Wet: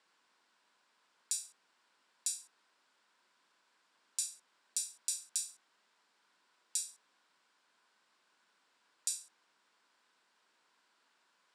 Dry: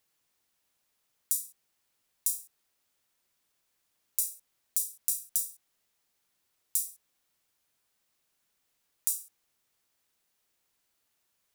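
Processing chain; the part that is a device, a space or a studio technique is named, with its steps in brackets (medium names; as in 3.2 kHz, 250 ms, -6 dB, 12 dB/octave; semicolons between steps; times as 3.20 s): television speaker (cabinet simulation 200–7100 Hz, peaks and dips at 1 kHz +9 dB, 1.5 kHz +8 dB, 6.3 kHz -8 dB); trim +6 dB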